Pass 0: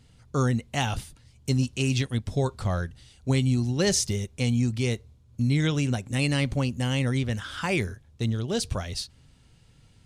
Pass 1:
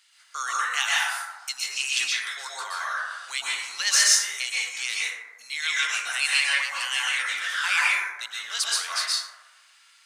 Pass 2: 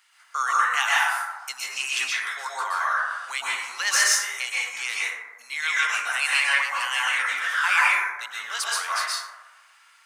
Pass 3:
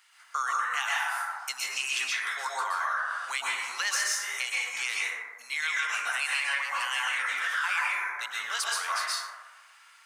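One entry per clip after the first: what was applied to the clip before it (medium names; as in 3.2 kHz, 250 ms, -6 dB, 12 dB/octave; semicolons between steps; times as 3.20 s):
plate-style reverb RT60 1.2 s, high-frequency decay 0.3×, pre-delay 110 ms, DRR -7 dB; in parallel at -9.5 dB: saturation -16 dBFS, distortion -10 dB; on the sum: high-pass 1.3 kHz 24 dB/octave; trim +3 dB
graphic EQ 1/4/8 kHz +5/-8/-5 dB; trim +3.5 dB
compression 4:1, threshold -27 dBFS, peak gain reduction 10 dB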